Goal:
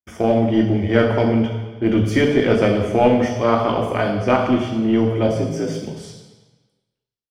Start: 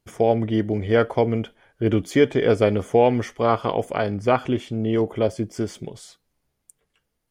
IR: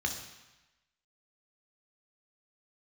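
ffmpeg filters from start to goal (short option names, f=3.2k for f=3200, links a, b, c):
-filter_complex "[0:a]asettb=1/sr,asplit=3[a][b][c];[a]atrim=end=5.274[d];[b]atrim=start=5.27:end=5.84,asetpts=PTS-STARTPTS,afade=t=in:d=0.004:c=qsin,afade=t=out:st=0.566:d=0.004:c=qsin,afreqshift=57[e];[c]atrim=start=5.836[f];[d][e]acrossfade=d=0.004:c1=hsin:c2=qsin[g];[g][f]acrossfade=d=0.004:c1=qsin:c2=hsin,agate=range=-31dB:threshold=-46dB:ratio=16:detection=peak,aecho=1:1:107|214|321|428:0.141|0.0706|0.0353|0.0177[h];[1:a]atrim=start_sample=2205,asetrate=37044,aresample=44100[i];[h][i]afir=irnorm=-1:irlink=0,asplit=2[j][k];[k]aeval=exprs='clip(val(0),-1,0.178)':c=same,volume=-6dB[l];[j][l]amix=inputs=2:normalize=0,volume=-5.5dB"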